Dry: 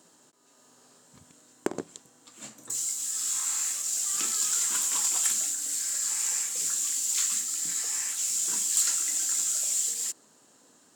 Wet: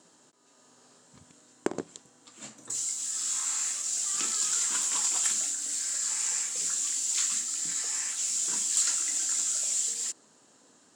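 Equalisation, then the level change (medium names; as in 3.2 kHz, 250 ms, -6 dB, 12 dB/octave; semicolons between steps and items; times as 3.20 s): Savitzky-Golay filter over 9 samples; 0.0 dB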